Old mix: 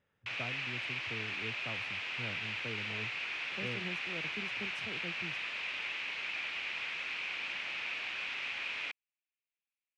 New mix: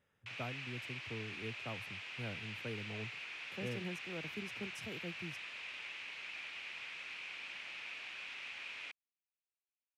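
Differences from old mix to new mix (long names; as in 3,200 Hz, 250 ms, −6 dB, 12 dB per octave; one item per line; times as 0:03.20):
background −9.0 dB
master: remove high-frequency loss of the air 68 metres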